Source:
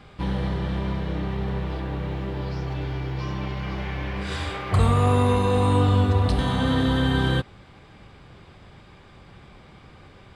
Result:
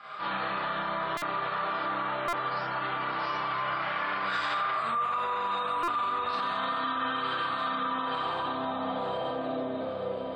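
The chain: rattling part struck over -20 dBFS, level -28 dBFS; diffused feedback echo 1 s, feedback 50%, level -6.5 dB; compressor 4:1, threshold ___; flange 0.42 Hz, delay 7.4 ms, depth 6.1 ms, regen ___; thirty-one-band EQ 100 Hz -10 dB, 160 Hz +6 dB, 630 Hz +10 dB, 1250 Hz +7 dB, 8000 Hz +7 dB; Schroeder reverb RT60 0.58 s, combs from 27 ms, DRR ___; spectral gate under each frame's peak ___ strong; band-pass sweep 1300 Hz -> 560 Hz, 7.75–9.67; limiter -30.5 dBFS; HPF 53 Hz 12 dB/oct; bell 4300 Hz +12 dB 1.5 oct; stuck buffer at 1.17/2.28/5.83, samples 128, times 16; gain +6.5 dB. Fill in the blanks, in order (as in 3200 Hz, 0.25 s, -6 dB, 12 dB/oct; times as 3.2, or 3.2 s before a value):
-26 dBFS, -49%, -7.5 dB, -40 dB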